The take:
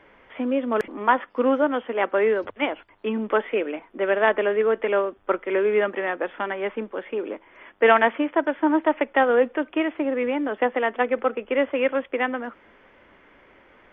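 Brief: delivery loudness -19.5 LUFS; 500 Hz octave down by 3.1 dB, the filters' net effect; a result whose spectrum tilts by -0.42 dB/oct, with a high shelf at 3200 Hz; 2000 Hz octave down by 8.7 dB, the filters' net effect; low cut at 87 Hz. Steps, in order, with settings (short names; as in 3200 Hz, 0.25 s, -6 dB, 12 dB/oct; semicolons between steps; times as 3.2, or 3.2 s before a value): HPF 87 Hz; bell 500 Hz -3 dB; bell 2000 Hz -8.5 dB; high shelf 3200 Hz -8 dB; gain +7 dB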